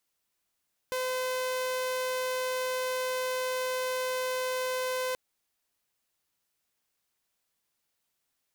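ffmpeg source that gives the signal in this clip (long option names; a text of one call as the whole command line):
ffmpeg -f lavfi -i "aevalsrc='0.0473*(2*mod(511*t,1)-1)':duration=4.23:sample_rate=44100" out.wav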